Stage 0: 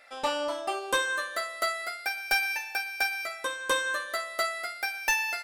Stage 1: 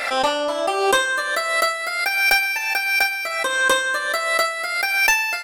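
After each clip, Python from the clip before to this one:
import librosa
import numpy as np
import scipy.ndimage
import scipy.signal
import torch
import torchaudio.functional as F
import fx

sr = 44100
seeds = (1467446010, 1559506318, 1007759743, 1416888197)

y = fx.pre_swell(x, sr, db_per_s=40.0)
y = y * 10.0 ** (8.0 / 20.0)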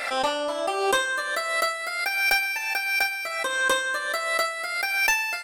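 y = x + 10.0 ** (-47.0 / 20.0) * np.sin(2.0 * np.pi * 8500.0 * np.arange(len(x)) / sr)
y = y * 10.0 ** (-5.0 / 20.0)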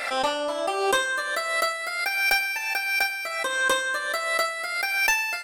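y = x + 10.0 ** (-23.5 / 20.0) * np.pad(x, (int(95 * sr / 1000.0), 0))[:len(x)]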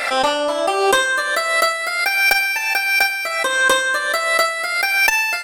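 y = fx.transformer_sat(x, sr, knee_hz=300.0)
y = y * 10.0 ** (8.0 / 20.0)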